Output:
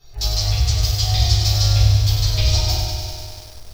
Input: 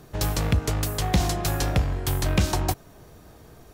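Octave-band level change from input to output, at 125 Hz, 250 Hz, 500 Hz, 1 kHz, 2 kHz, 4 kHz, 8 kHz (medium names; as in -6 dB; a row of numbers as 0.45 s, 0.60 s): +8.5 dB, -9.0 dB, -3.0 dB, -2.0 dB, -0.5 dB, +13.0 dB, +6.5 dB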